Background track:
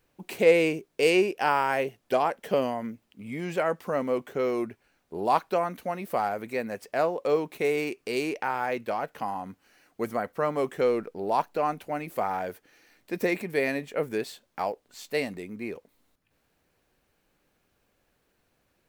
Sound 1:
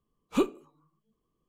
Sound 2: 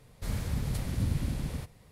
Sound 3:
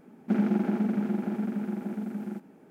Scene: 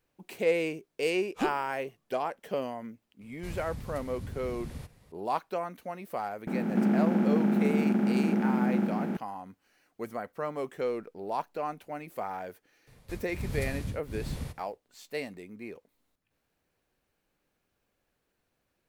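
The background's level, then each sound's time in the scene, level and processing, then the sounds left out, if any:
background track −7 dB
0:01.04: mix in 1 −5.5 dB
0:03.21: mix in 2 −9 dB + speech leveller
0:06.47: mix in 3 −3 dB + compressor on every frequency bin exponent 0.2
0:12.87: mix in 2 −0.5 dB + tremolo along a rectified sine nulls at 1.3 Hz

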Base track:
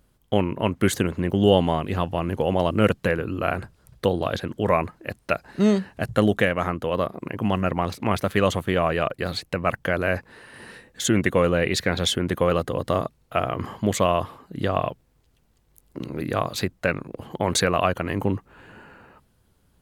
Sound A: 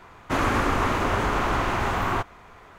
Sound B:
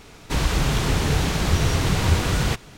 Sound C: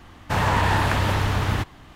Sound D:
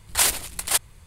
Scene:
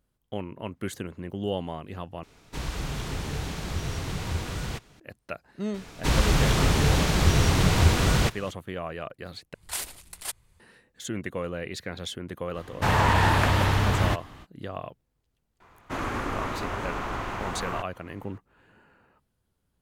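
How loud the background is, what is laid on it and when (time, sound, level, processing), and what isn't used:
base track −12.5 dB
0:02.23: overwrite with B −11 dB
0:05.74: mix in B −0.5 dB
0:09.54: overwrite with D −13 dB
0:12.52: mix in C −0.5 dB, fades 0.05 s
0:15.60: mix in A −8 dB

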